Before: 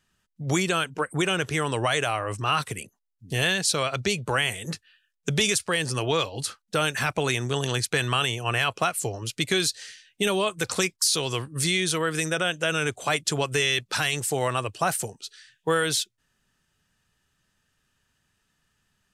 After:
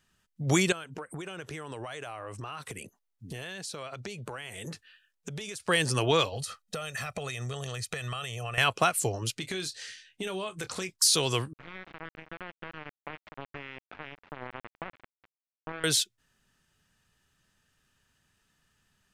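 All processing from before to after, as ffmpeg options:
-filter_complex "[0:a]asettb=1/sr,asplit=3[a][b][c];[a]atrim=end=0.724[d];[b]atrim=start=0.72:end=5.65,asetpts=PTS-STARTPTS,afade=t=in:d=0.004:c=qsin,afade=t=out:st=4.926:d=0.004:c=qsin,equalizer=f=600:w=0.34:g=4.5,acompressor=threshold=-36dB:ratio=8:attack=3.2:release=140:knee=1:detection=peak[e];[c]atrim=start=5.646[f];[d][e]acrossfade=d=0.004:c1=hsin:c2=qsin[g];[g][f]acrossfade=d=0.004:c1=qsin:c2=hsin,asettb=1/sr,asplit=3[h][i][j];[h]atrim=end=6.324[k];[i]atrim=start=6.32:end=8.58,asetpts=PTS-STARTPTS,afade=t=in:d=0.004:c=qsin,afade=t=out:st=2.256:d=0.004:c=qsin,aecho=1:1:1.6:0.69,atrim=end_sample=99666,acompressor=threshold=-31dB:ratio=16:attack=3.2:release=140:knee=1:detection=peak[l];[j]atrim=start=8.576[m];[k][l]acrossfade=d=0.004:c1=hsin:c2=qsin[n];[n][m]acrossfade=d=0.004:c1=qsin:c2=hsin,asettb=1/sr,asplit=3[o][p][q];[o]atrim=end=9.334[r];[p]atrim=start=9.33:end=10.89,asetpts=PTS-STARTPTS,afade=t=in:d=0.004:c=qsin,afade=t=out:st=1.556:d=0.004:c=qsin,highshelf=f=9.7k:g=-9,acompressor=threshold=-36dB:ratio=2.5:attack=3.2:release=140:knee=1:detection=peak,asplit=2[s][t];[t]adelay=27,volume=-12dB[u];[s][u]amix=inputs=2:normalize=0,atrim=end_sample=68796[v];[q]atrim=start=10.886[w];[r][v]acrossfade=d=0.004:c1=hsin:c2=qsin[x];[x][w]acrossfade=d=0.004:c1=qsin:c2=hsin,asettb=1/sr,asplit=3[y][z][aa];[y]atrim=end=11.534[ab];[z]atrim=start=11.53:end=15.84,asetpts=PTS-STARTPTS,afade=t=in:d=0.004:c=qsin,afade=t=out:st=4.306:d=0.004:c=qsin,acompressor=threshold=-36dB:ratio=2.5:attack=3.2:release=140:knee=1:detection=peak,aeval=exprs='val(0)*gte(abs(val(0)),0.0398)':c=same,lowpass=f=2.4k:w=0.5412,lowpass=f=2.4k:w=1.3066[ac];[aa]atrim=start=15.836[ad];[ab][ac]acrossfade=d=0.004:c1=hsin:c2=qsin[ae];[ae][ad]acrossfade=d=0.004:c1=qsin:c2=hsin"

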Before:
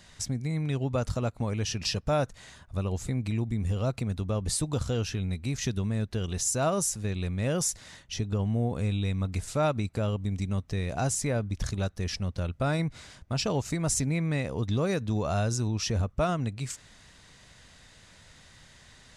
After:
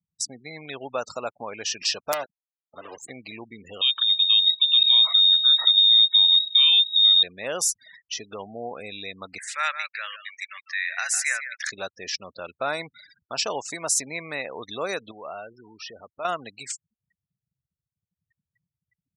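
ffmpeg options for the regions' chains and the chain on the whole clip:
-filter_complex "[0:a]asettb=1/sr,asplit=3[a][b][c];[a]atrim=end=2.124[d];[b]atrim=start=2.12:end=3.1,asetpts=PTS-STARTPTS,afade=t=in:d=0.004:c=qsin,afade=t=out:st=0.976:d=0.004:c=qsin,bandreject=f=510:w=12,acrusher=bits=4:dc=4:mix=0:aa=0.000001[e];[c]atrim=start=3.096[f];[d][e]acrossfade=d=0.004:c1=hsin:c2=qsin[g];[g][f]acrossfade=d=0.004:c1=qsin:c2=hsin,asettb=1/sr,asplit=3[h][i][j];[h]atrim=end=3.814[k];[i]atrim=start=3.81:end=7.23,asetpts=PTS-STARTPTS,afade=t=in:d=0.004:c=qsin,afade=t=out:st=3.416:d=0.004:c=qsin,asubboost=boost=9.5:cutoff=210,acompressor=threshold=-19dB:ratio=5:attack=3.2:release=140:knee=1:detection=peak,lowpass=f=3.2k:t=q:w=0.5098,lowpass=f=3.2k:t=q:w=0.6013,lowpass=f=3.2k:t=q:w=0.9,lowpass=f=3.2k:t=q:w=2.563,afreqshift=-3800[l];[j]atrim=start=7.226[m];[k][l]acrossfade=d=0.004:c1=hsin:c2=qsin[n];[n][m]acrossfade=d=0.004:c1=qsin:c2=hsin,asettb=1/sr,asplit=3[o][p][q];[o]atrim=end=9.384[r];[p]atrim=start=9.38:end=11.72,asetpts=PTS-STARTPTS,afade=t=in:d=0.004:c=qsin,afade=t=out:st=2.336:d=0.004:c=qsin,highpass=f=1.8k:t=q:w=5,aecho=1:1:155:0.316,atrim=end_sample=103194[s];[q]atrim=start=11.716[t];[r][s]acrossfade=d=0.004:c1=hsin:c2=qsin[u];[u][t]acrossfade=d=0.004:c1=qsin:c2=hsin,asettb=1/sr,asplit=3[v][w][x];[v]atrim=end=15.114[y];[w]atrim=start=15.11:end=16.25,asetpts=PTS-STARTPTS,afade=t=in:d=0.004:c=qsin,afade=t=out:st=1.136:d=0.004:c=qsin,acompressor=threshold=-36dB:ratio=2.5:attack=3.2:release=140:knee=1:detection=peak,lowpass=f=4.7k:w=0.5412,lowpass=f=4.7k:w=1.3066,adynamicequalizer=threshold=0.00178:dfrequency=3000:dqfactor=0.7:tfrequency=3000:tqfactor=0.7:attack=5:release=100:ratio=0.375:range=2.5:mode=cutabove:tftype=highshelf[z];[x]atrim=start=16.246[aa];[y][z]acrossfade=d=0.004:c1=hsin:c2=qsin[ab];[ab][aa]acrossfade=d=0.004:c1=qsin:c2=hsin,afftfilt=real='re*gte(hypot(re,im),0.00891)':imag='im*gte(hypot(re,im),0.00891)':win_size=1024:overlap=0.75,highpass=640,volume=6dB"

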